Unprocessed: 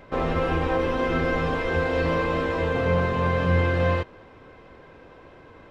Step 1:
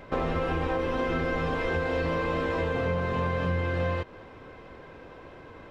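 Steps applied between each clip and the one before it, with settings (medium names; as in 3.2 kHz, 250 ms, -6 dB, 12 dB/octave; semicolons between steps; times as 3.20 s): compression, threshold -26 dBFS, peak gain reduction 9.5 dB; trim +1.5 dB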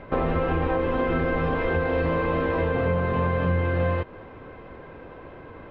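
distance through air 330 m; trim +5 dB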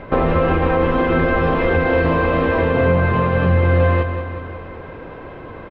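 feedback delay 186 ms, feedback 58%, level -9 dB; trim +7.5 dB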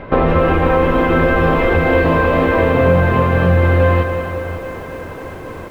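bit-crushed delay 274 ms, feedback 80%, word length 7-bit, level -13 dB; trim +3 dB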